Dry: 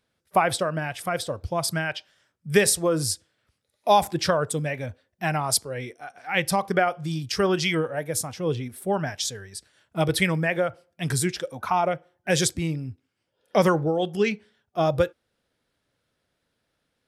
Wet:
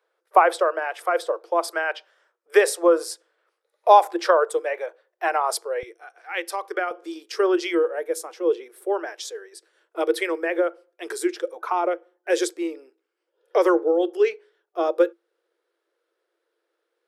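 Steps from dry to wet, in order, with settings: rippled Chebyshev high-pass 330 Hz, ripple 6 dB; bell 670 Hz +12 dB 2.5 oct, from 5.83 s 87 Hz, from 6.91 s 280 Hz; gain -1.5 dB

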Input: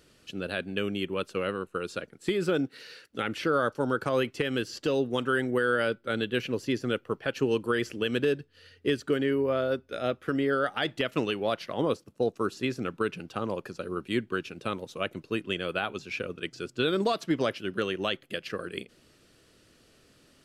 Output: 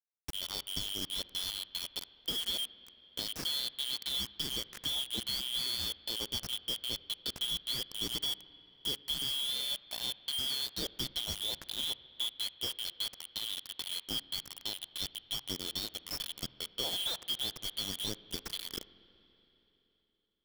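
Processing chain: four-band scrambler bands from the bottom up 3412; low shelf 420 Hz +7.5 dB; compressor 2:1, threshold -37 dBFS, peak gain reduction 9 dB; bit-crush 6-bit; on a send: reverb RT60 3.6 s, pre-delay 47 ms, DRR 16.5 dB; on the sum: gain -2 dB

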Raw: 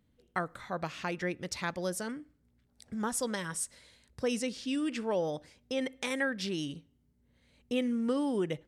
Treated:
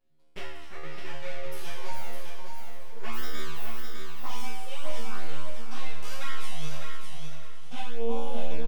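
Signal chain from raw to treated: 0.72–1.25 elliptic low-pass 2700 Hz; 3.01–3.44 comb 3.2 ms, depth 99%; 5.09–6.19 bell 340 Hz -11 dB 0.33 oct; full-wave rectifier; resonator 77 Hz, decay 0.98 s, harmonics all, mix 100%; envelope flanger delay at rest 7.6 ms, full sweep at -31 dBFS; feedback echo 0.605 s, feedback 23%, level -5.5 dB; warbling echo 0.504 s, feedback 52%, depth 73 cents, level -13.5 dB; gain +15 dB

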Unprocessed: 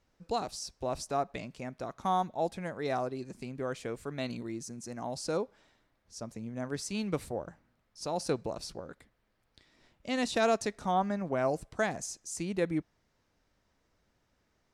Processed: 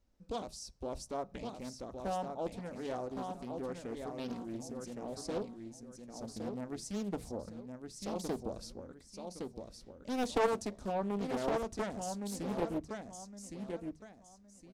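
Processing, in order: low shelf 85 Hz +6 dB; on a send at -17 dB: reverb RT60 0.20 s, pre-delay 3 ms; on the sum: spectral gain 10.19–10.47, 370–2000 Hz +6 dB; bell 1700 Hz -7 dB 2.3 oct; feedback echo 1.114 s, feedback 29%, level -5.5 dB; Doppler distortion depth 0.77 ms; gain -4.5 dB

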